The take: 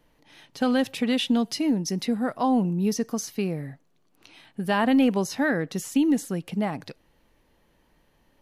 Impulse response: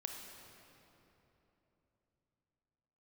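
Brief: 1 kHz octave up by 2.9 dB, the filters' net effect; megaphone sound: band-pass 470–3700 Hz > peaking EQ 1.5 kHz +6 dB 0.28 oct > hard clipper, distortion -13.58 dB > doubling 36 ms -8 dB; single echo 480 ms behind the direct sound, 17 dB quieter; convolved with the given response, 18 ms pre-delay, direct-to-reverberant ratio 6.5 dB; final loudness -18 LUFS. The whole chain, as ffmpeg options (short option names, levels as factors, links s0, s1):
-filter_complex "[0:a]equalizer=f=1000:t=o:g=4,aecho=1:1:480:0.141,asplit=2[s0][s1];[1:a]atrim=start_sample=2205,adelay=18[s2];[s1][s2]afir=irnorm=-1:irlink=0,volume=0.562[s3];[s0][s3]amix=inputs=2:normalize=0,highpass=470,lowpass=3700,equalizer=f=1500:t=o:w=0.28:g=6,asoftclip=type=hard:threshold=0.119,asplit=2[s4][s5];[s5]adelay=36,volume=0.398[s6];[s4][s6]amix=inputs=2:normalize=0,volume=3.35"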